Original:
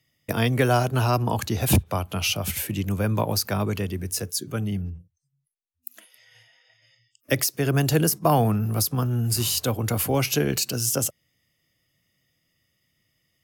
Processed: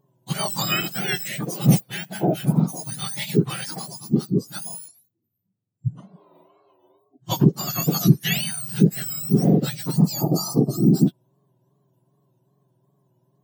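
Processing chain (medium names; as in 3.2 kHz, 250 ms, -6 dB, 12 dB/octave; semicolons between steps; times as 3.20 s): spectrum inverted on a logarithmic axis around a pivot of 1.4 kHz; wow and flutter 110 cents; time-frequency box 9.91–11.07 s, 1.3–4.1 kHz -18 dB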